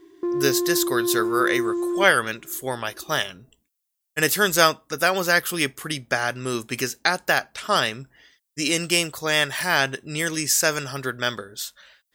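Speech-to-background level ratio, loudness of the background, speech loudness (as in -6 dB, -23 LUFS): 3.0 dB, -25.5 LUFS, -22.5 LUFS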